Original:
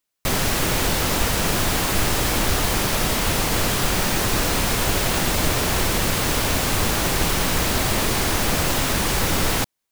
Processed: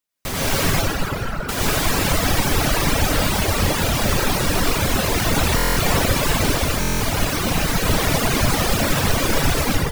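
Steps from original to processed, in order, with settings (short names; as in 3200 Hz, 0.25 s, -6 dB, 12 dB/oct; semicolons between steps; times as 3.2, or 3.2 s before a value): 0.7–1.49 band-pass 1400 Hz, Q 9.6; outdoor echo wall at 66 m, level -7 dB; reverb RT60 3.8 s, pre-delay 81 ms, DRR -8.5 dB; reverb removal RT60 1.2 s; AGC; stuck buffer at 5.56/6.8, samples 1024; gain -5 dB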